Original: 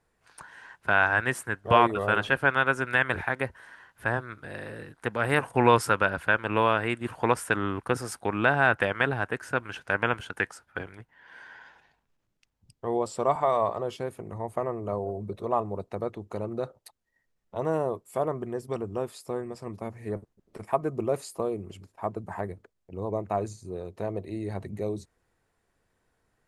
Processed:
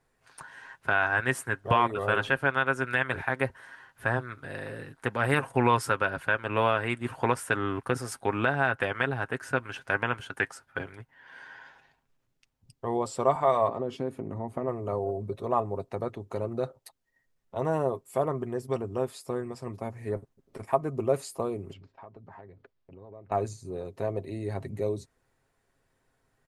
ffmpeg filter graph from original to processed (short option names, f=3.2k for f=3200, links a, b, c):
-filter_complex "[0:a]asettb=1/sr,asplit=3[a][b][c];[a]atrim=end=13.684[d];[b]atrim=start=13.68:end=14.68,asetpts=PTS-STARTPTS,afade=t=in:d=0.004:c=qsin,afade=t=out:st=0.996:d=0.004:c=qsin,lowpass=f=4k:p=1,equalizer=f=250:w=1.3:g=10.5,acompressor=threshold=-31dB:ratio=2:attack=3.2:release=140:knee=1:detection=peak[e];[c]atrim=start=14.676[f];[d][e]acrossfade=d=0.004:c1=hsin:c2=qsin[g];[g][f]acrossfade=d=0.004:c1=qsin:c2=hsin,asettb=1/sr,asplit=3[h][i][j];[h]atrim=end=21.734[k];[i]atrim=start=21.73:end=23.32,asetpts=PTS-STARTPTS,afade=t=in:d=0.004:c=qsin,afade=t=out:st=1.586:d=0.004:c=qsin,acompressor=threshold=-47dB:ratio=4:attack=3.2:release=140:knee=1:detection=peak,lowpass=f=4.6k:w=0.5412,lowpass=f=4.6k:w=1.3066[l];[j]atrim=start=23.316[m];[k][l]acrossfade=d=0.004:c1=hsin:c2=qsin[n];[n][m]acrossfade=d=0.004:c1=qsin:c2=hsin,aecho=1:1:7.5:0.39,alimiter=limit=-10.5dB:level=0:latency=1:release=459"